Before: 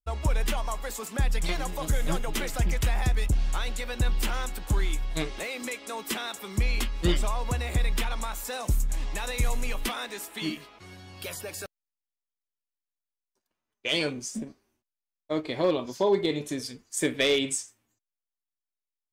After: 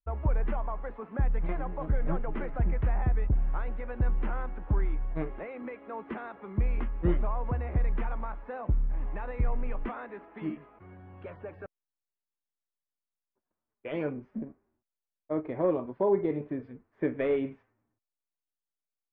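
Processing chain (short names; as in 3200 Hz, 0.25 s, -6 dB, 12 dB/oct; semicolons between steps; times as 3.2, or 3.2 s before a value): Bessel low-pass 1200 Hz, order 6; gain -1.5 dB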